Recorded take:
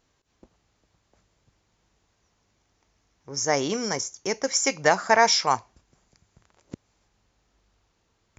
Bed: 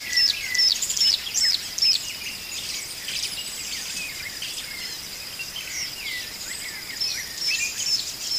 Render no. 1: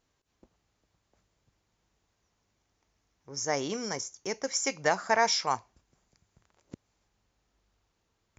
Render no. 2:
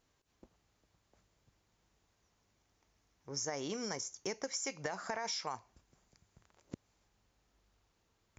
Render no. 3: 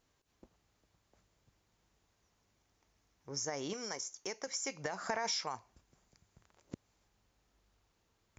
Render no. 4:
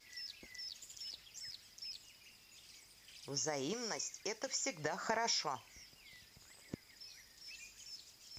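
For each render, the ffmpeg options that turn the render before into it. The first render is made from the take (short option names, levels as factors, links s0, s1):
-af "volume=0.473"
-af "alimiter=limit=0.112:level=0:latency=1:release=11,acompressor=threshold=0.0178:ratio=10"
-filter_complex "[0:a]asettb=1/sr,asplit=3[s0][s1][s2];[s0]atrim=end=3.734[s3];[s1]atrim=start=3.73:end=4.47,asetpts=PTS-STARTPTS,afade=t=in:d=0.004:c=qsin,afade=t=out:st=0.736:d=0.004:c=qsin,equalizer=f=78:w=0.34:g=-12[s4];[s2]atrim=start=4.466[s5];[s3][s4]acrossfade=d=0.004:c1=hsin:c2=qsin[s6];[s6][s5]acrossfade=d=0.004:c1=qsin:c2=hsin,asplit=3[s7][s8][s9];[s7]atrim=end=5.012[s10];[s8]atrim=start=5.008:end=5.442,asetpts=PTS-STARTPTS,volume=1.41[s11];[s9]atrim=start=5.438[s12];[s10][s11]acrossfade=d=0.004:c1=hsin:c2=hsin[s13];[s13][s12]acrossfade=d=0.004:c1=hsin:c2=hsin"
-filter_complex "[1:a]volume=0.0376[s0];[0:a][s0]amix=inputs=2:normalize=0"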